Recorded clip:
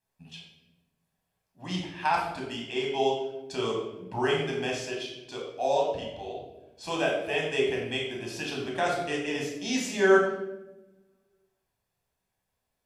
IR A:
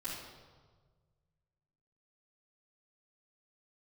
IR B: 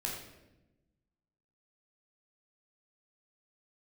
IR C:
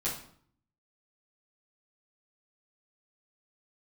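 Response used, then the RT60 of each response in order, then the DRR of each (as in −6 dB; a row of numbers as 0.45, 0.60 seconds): B; 1.5, 1.0, 0.60 seconds; −12.0, −2.0, −9.5 decibels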